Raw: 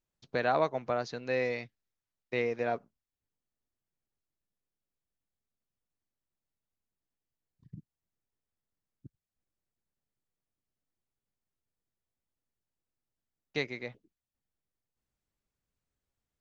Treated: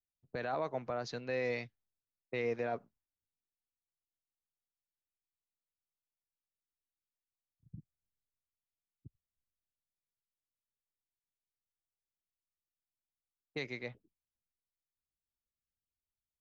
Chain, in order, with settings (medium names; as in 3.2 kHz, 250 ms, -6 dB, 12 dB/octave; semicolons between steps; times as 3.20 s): level-controlled noise filter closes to 540 Hz, open at -31.5 dBFS; peak limiter -25 dBFS, peak gain reduction 10 dB; three bands expanded up and down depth 40%; trim -1.5 dB